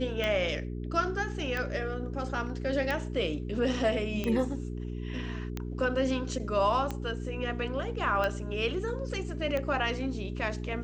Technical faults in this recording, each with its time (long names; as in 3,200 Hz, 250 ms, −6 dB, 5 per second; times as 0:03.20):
mains hum 60 Hz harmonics 7 −36 dBFS
scratch tick 45 rpm −18 dBFS